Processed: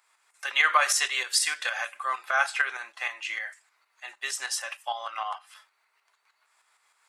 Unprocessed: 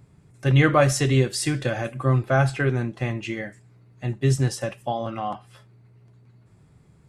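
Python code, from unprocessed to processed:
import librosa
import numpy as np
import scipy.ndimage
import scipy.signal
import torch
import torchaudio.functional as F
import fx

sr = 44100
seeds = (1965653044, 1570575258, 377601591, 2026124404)

y = scipy.signal.sosfilt(scipy.signal.butter(4, 980.0, 'highpass', fs=sr, output='sos'), x)
y = fx.tremolo_shape(y, sr, shape='saw_up', hz=6.5, depth_pct=55)
y = y * librosa.db_to_amplitude(6.5)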